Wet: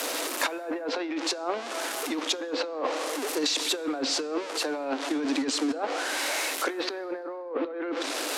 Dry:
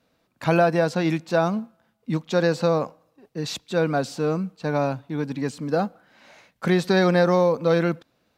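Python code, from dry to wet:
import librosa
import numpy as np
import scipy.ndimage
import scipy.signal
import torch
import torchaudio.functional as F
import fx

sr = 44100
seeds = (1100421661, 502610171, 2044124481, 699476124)

y = x + 0.5 * 10.0 ** (-31.5 / 20.0) * np.sign(x)
y = fx.env_lowpass_down(y, sr, base_hz=2900.0, full_db=-15.0)
y = scipy.signal.sosfilt(scipy.signal.butter(16, 270.0, 'highpass', fs=sr, output='sos'), y)
y = fx.env_lowpass_down(y, sr, base_hz=1800.0, full_db=-15.0)
y = fx.high_shelf(y, sr, hz=7500.0, db=9.0)
y = fx.over_compress(y, sr, threshold_db=-30.0, ratio=-1.0)
y = fx.air_absorb(y, sr, metres=290.0, at=(7.01, 7.67))
y = fx.rev_plate(y, sr, seeds[0], rt60_s=2.0, hf_ratio=0.65, predelay_ms=0, drr_db=19.0)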